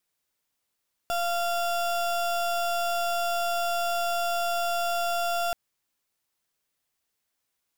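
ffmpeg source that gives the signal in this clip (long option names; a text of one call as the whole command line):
ffmpeg -f lavfi -i "aevalsrc='0.0447*(2*lt(mod(691*t,1),0.33)-1)':duration=4.43:sample_rate=44100" out.wav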